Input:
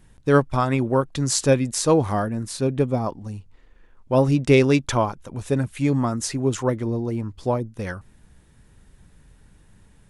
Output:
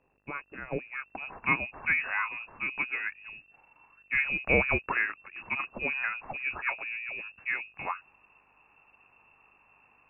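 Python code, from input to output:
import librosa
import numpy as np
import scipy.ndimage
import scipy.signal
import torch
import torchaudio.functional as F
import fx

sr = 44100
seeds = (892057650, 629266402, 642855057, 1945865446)

y = fx.freq_invert(x, sr, carrier_hz=2700)
y = fx.filter_sweep_lowpass(y, sr, from_hz=490.0, to_hz=1100.0, start_s=0.64, end_s=1.48, q=1.4)
y = fx.dmg_buzz(y, sr, base_hz=50.0, harmonics=40, level_db=-78.0, tilt_db=-3, odd_only=False)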